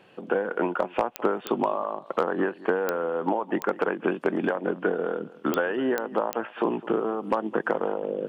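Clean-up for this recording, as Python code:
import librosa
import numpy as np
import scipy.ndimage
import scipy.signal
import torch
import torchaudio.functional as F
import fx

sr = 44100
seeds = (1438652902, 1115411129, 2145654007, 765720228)

y = fx.fix_declip(x, sr, threshold_db=-12.0)
y = fx.fix_declick_ar(y, sr, threshold=10.0)
y = fx.fix_echo_inverse(y, sr, delay_ms=210, level_db=-19.5)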